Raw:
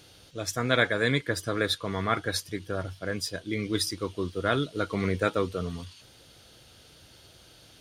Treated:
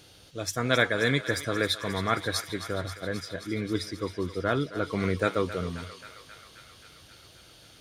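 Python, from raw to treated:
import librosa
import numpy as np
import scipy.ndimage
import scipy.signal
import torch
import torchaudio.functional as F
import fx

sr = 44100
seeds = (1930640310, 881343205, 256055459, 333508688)

y = fx.lowpass(x, sr, hz=2000.0, slope=6, at=(2.81, 4.85))
y = fx.echo_thinned(y, sr, ms=266, feedback_pct=80, hz=720.0, wet_db=-11.5)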